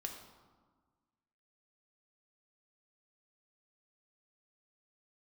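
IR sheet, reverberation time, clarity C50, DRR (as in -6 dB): 1.5 s, 6.0 dB, 2.0 dB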